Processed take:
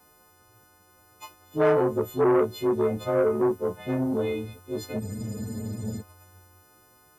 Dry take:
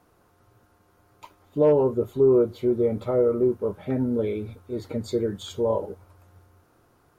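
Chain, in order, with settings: frequency quantiser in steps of 3 st; spectral freeze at 5.02, 0.98 s; core saturation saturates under 720 Hz

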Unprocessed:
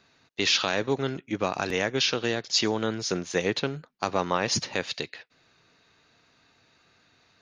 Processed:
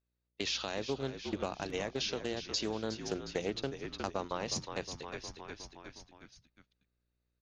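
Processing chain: notches 60/120/180 Hz; buzz 60 Hz, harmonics 10, -50 dBFS -7 dB/oct; gate -28 dBFS, range -38 dB; in parallel at +1 dB: vocal rider 0.5 s; on the sum: frequency-shifting echo 0.361 s, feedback 48%, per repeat -51 Hz, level -12 dB; dynamic EQ 1700 Hz, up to -6 dB, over -33 dBFS, Q 0.89; compressor 2:1, threshold -41 dBFS, peak gain reduction 15 dB; Doppler distortion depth 0.15 ms; gain -2 dB

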